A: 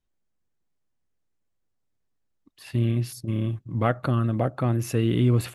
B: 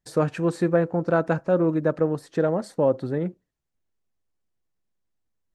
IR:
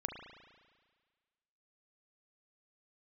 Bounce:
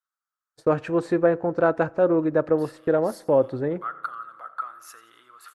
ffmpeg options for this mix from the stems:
-filter_complex "[0:a]equalizer=frequency=2500:width_type=o:width=0.87:gain=-11.5,acompressor=threshold=-28dB:ratio=6,highpass=frequency=1300:width_type=q:width=8.8,volume=-7dB,asplit=3[link_01][link_02][link_03];[link_02]volume=-8dB[link_04];[link_03]volume=-14.5dB[link_05];[1:a]agate=range=-41dB:threshold=-40dB:ratio=16:detection=peak,highshelf=frequency=4000:gain=-11,adelay=500,volume=2dB,asplit=2[link_06][link_07];[link_07]volume=-21.5dB[link_08];[2:a]atrim=start_sample=2205[link_09];[link_04][link_08]amix=inputs=2:normalize=0[link_10];[link_10][link_09]afir=irnorm=-1:irlink=0[link_11];[link_05]aecho=0:1:88|176|264|352|440|528:1|0.43|0.185|0.0795|0.0342|0.0147[link_12];[link_01][link_06][link_11][link_12]amix=inputs=4:normalize=0,equalizer=frequency=180:width_type=o:width=0.8:gain=-9.5"

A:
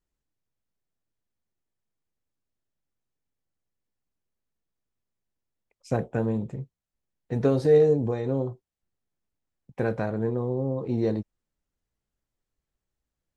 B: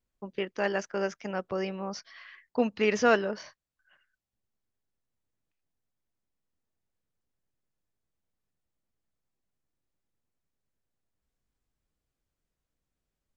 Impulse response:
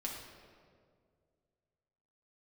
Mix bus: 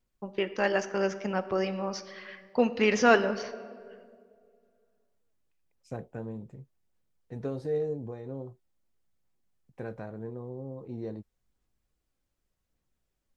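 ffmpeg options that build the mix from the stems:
-filter_complex "[0:a]adynamicequalizer=threshold=0.00708:dfrequency=2000:dqfactor=0.7:tfrequency=2000:tqfactor=0.7:attack=5:release=100:ratio=0.375:range=2.5:mode=cutabove:tftype=highshelf,volume=-12dB[link_01];[1:a]aphaser=in_gain=1:out_gain=1:delay=3.8:decay=0.25:speed=0.86:type=sinusoidal,volume=0dB,asplit=2[link_02][link_03];[link_03]volume=-7.5dB[link_04];[2:a]atrim=start_sample=2205[link_05];[link_04][link_05]afir=irnorm=-1:irlink=0[link_06];[link_01][link_02][link_06]amix=inputs=3:normalize=0"

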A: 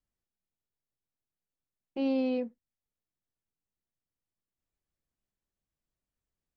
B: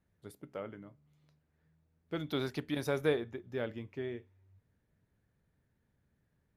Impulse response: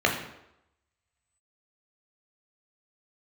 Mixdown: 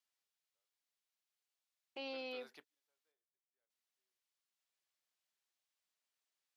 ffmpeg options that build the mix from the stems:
-filter_complex "[0:a]equalizer=frequency=3900:width=0.54:gain=7.5,volume=-1dB,asplit=3[link_01][link_02][link_03];[link_01]atrim=end=3.12,asetpts=PTS-STARTPTS,afade=type=out:start_time=3.116:duration=0.004:curve=hsin[link_04];[link_02]atrim=start=3.12:end=3.7,asetpts=PTS-STARTPTS,volume=0[link_05];[link_03]atrim=start=3.7,asetpts=PTS-STARTPTS,afade=type=in:duration=0.004:curve=hsin[link_06];[link_04][link_05][link_06]concat=n=3:v=0:a=1,asplit=2[link_07][link_08];[1:a]volume=-10.5dB[link_09];[link_08]apad=whole_len=289365[link_10];[link_09][link_10]sidechaingate=range=-44dB:threshold=-55dB:ratio=16:detection=peak[link_11];[link_07][link_11]amix=inputs=2:normalize=0,highpass=680,acompressor=threshold=-54dB:ratio=1.5"

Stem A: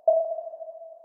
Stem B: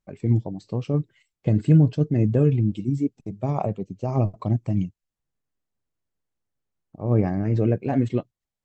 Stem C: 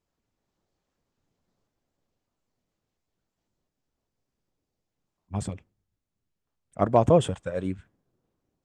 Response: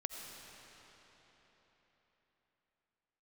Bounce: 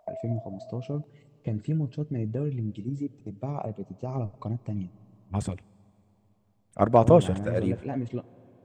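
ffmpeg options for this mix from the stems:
-filter_complex "[0:a]equalizer=frequency=1200:width=1.3:gain=12,acompressor=threshold=-26dB:ratio=6,volume=-8.5dB[link_01];[1:a]acompressor=threshold=-25dB:ratio=2,volume=-6dB,asplit=2[link_02][link_03];[link_03]volume=-16.5dB[link_04];[2:a]deesser=0.9,volume=1dB,asplit=2[link_05][link_06];[link_06]volume=-21.5dB[link_07];[3:a]atrim=start_sample=2205[link_08];[link_04][link_07]amix=inputs=2:normalize=0[link_09];[link_09][link_08]afir=irnorm=-1:irlink=0[link_10];[link_01][link_02][link_05][link_10]amix=inputs=4:normalize=0"

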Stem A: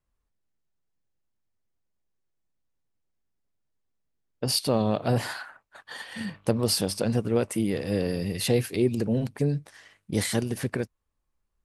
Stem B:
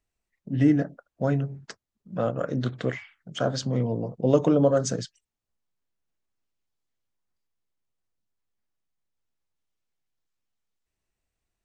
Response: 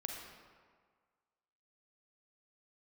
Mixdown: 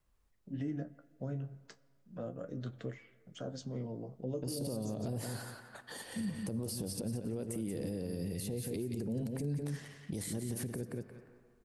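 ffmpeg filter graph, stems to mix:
-filter_complex "[0:a]acompressor=threshold=-26dB:ratio=6,volume=2.5dB,asplit=3[link_01][link_02][link_03];[link_02]volume=-11.5dB[link_04];[link_03]volume=-8.5dB[link_05];[1:a]flanger=delay=8.8:depth=7.1:regen=44:speed=0.34:shape=sinusoidal,volume=-9dB,asplit=2[link_06][link_07];[link_07]volume=-17.5dB[link_08];[2:a]atrim=start_sample=2205[link_09];[link_04][link_08]amix=inputs=2:normalize=0[link_10];[link_10][link_09]afir=irnorm=-1:irlink=0[link_11];[link_05]aecho=0:1:177|354|531:1|0.15|0.0225[link_12];[link_01][link_06][link_11][link_12]amix=inputs=4:normalize=0,acrossover=split=530|6300[link_13][link_14][link_15];[link_13]acompressor=threshold=-28dB:ratio=4[link_16];[link_14]acompressor=threshold=-52dB:ratio=4[link_17];[link_15]acompressor=threshold=-39dB:ratio=4[link_18];[link_16][link_17][link_18]amix=inputs=3:normalize=0,alimiter=level_in=5.5dB:limit=-24dB:level=0:latency=1:release=80,volume=-5.5dB"

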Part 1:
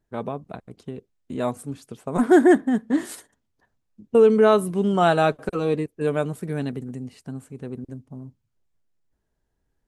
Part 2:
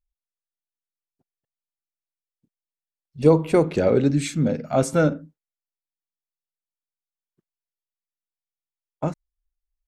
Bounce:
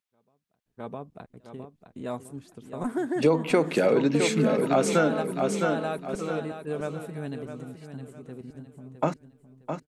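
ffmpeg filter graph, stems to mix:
ffmpeg -i stem1.wav -i stem2.wav -filter_complex "[0:a]acompressor=threshold=-18dB:ratio=6,volume=-4dB,asplit=2[link_01][link_02];[link_02]volume=-3.5dB[link_03];[1:a]highpass=frequency=160:width=0.5412,highpass=frequency=160:width=1.3066,equalizer=frequency=2200:width_type=o:width=2.7:gain=6.5,volume=2dB,asplit=3[link_04][link_05][link_06];[link_05]volume=-9.5dB[link_07];[link_06]apad=whole_len=435272[link_08];[link_01][link_08]sidechaingate=range=-36dB:threshold=-29dB:ratio=16:detection=peak[link_09];[link_03][link_07]amix=inputs=2:normalize=0,aecho=0:1:660|1320|1980|2640|3300:1|0.34|0.116|0.0393|0.0134[link_10];[link_09][link_04][link_10]amix=inputs=3:normalize=0,acompressor=threshold=-20dB:ratio=3" out.wav

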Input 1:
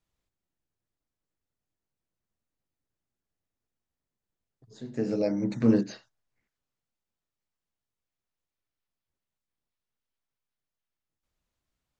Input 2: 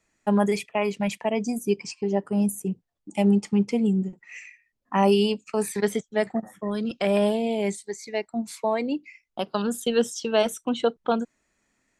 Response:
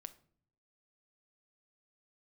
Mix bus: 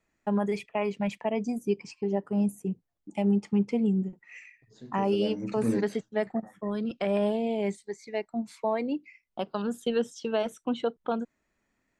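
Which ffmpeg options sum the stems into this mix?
-filter_complex "[0:a]volume=-6.5dB,asplit=2[link_01][link_02];[link_02]volume=-13dB[link_03];[1:a]lowpass=frequency=2400:poles=1,volume=-3dB[link_04];[2:a]atrim=start_sample=2205[link_05];[link_03][link_05]afir=irnorm=-1:irlink=0[link_06];[link_01][link_04][link_06]amix=inputs=3:normalize=0,alimiter=limit=-16.5dB:level=0:latency=1:release=222"

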